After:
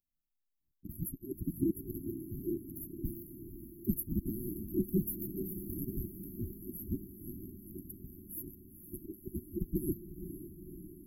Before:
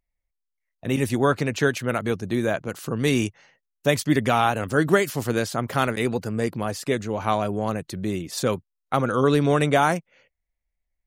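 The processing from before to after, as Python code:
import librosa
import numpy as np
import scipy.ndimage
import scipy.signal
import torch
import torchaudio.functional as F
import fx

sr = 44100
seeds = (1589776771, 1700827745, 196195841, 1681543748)

y = fx.band_invert(x, sr, width_hz=2000)
y = fx.brickwall_bandstop(y, sr, low_hz=380.0, high_hz=11000.0)
y = fx.echo_diffused(y, sr, ms=493, feedback_pct=67, wet_db=-10.0)
y = y * 10.0 ** (1.5 / 20.0)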